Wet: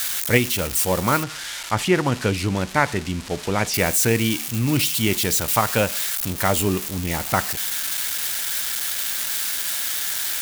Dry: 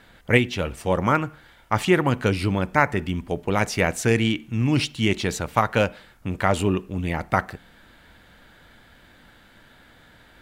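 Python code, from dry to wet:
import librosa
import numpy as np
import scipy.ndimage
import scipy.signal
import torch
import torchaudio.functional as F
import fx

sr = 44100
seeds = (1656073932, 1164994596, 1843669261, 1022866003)

y = x + 0.5 * 10.0 ** (-14.5 / 20.0) * np.diff(np.sign(x), prepend=np.sign(x[:1]))
y = fx.air_absorb(y, sr, metres=64.0, at=(1.23, 3.74))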